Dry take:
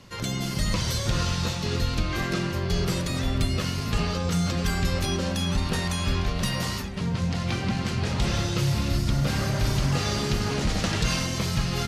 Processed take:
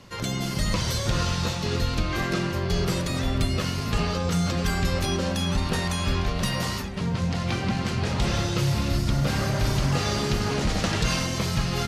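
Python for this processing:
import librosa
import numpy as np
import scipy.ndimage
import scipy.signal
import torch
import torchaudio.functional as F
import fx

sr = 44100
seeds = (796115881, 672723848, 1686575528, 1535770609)

y = fx.peak_eq(x, sr, hz=720.0, db=2.5, octaves=2.6)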